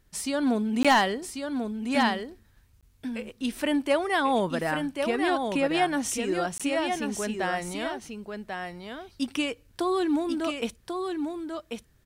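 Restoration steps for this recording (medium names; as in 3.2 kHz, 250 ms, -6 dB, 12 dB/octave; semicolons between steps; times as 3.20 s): clip repair -13 dBFS; interpolate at 0.83/2.81/6.58 s, 16 ms; inverse comb 1091 ms -5.5 dB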